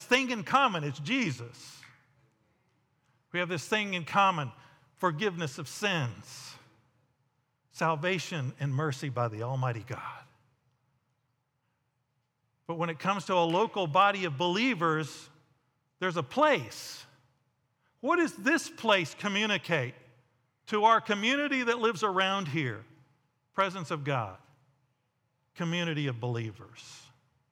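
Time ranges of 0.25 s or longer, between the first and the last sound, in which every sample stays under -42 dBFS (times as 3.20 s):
1.86–3.34 s
4.51–5.01 s
6.56–7.76 s
10.21–12.69 s
15.25–16.02 s
17.03–18.03 s
19.91–20.68 s
22.81–23.58 s
24.35–25.58 s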